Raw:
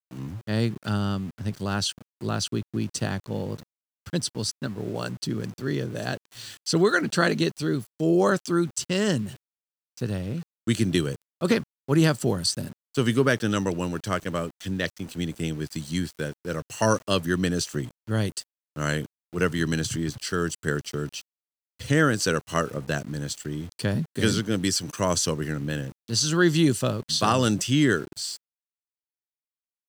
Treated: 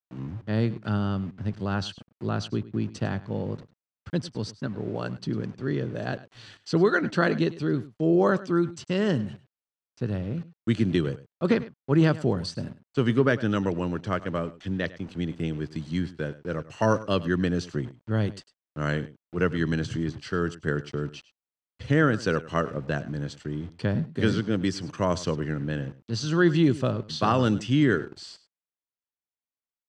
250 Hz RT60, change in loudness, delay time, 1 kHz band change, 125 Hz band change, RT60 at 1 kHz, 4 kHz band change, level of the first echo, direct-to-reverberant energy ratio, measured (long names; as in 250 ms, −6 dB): no reverb audible, −1.0 dB, 102 ms, −1.0 dB, 0.0 dB, no reverb audible, −7.5 dB, −17.5 dB, no reverb audible